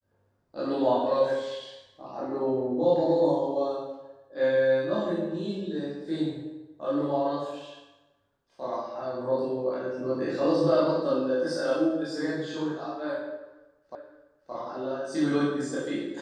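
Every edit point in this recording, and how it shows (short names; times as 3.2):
13.95 repeat of the last 0.57 s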